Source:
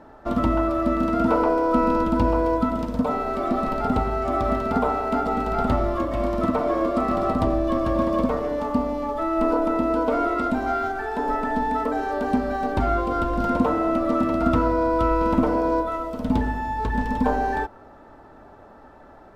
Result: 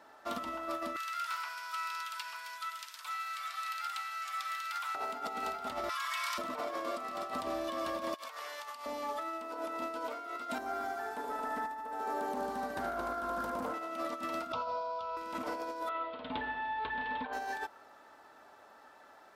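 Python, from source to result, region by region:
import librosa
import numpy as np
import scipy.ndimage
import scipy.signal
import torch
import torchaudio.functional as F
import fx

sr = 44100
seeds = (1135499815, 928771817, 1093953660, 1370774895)

y = fx.chain(x, sr, fx.highpass(hz=1400.0, slope=24),
    fx.clip_hard(threshold_db=-25.5), at=(0.96, 4.95))
y = fx.chain(y, sr, fx.steep_highpass(hz=1100.0, slope=36),
    fx.comb(ms=3.1, depth=0.68),
    fx.env_flatten(amount_pct=100), at=(5.89, 6.38))
y = fx.chain(y, sr, fx.highpass(hz=1200.0, slope=12),
    fx.over_compress(threshold_db=-37.0, ratio=-0.5), at=(8.14, 8.86))
y = fx.chain(y, sr, fx.peak_eq(hz=3300.0, db=-13.0, octaves=2.9),
    fx.echo_heads(ms=74, heads='all three', feedback_pct=46, wet_db=-7),
    fx.doppler_dist(depth_ms=0.23), at=(10.58, 13.74))
y = fx.chain(y, sr, fx.lowpass(hz=4600.0, slope=24),
    fx.peak_eq(hz=61.0, db=-13.5, octaves=0.63),
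    fx.fixed_phaser(hz=760.0, stages=4), at=(14.52, 15.17))
y = fx.chain(y, sr, fx.steep_lowpass(hz=3800.0, slope=48),
    fx.peak_eq(hz=210.0, db=-8.0, octaves=0.33), at=(15.89, 17.33))
y = fx.highpass(y, sr, hz=1100.0, slope=6)
y = fx.high_shelf(y, sr, hz=2200.0, db=11.0)
y = fx.over_compress(y, sr, threshold_db=-29.0, ratio=-0.5)
y = y * librosa.db_to_amplitude(-7.5)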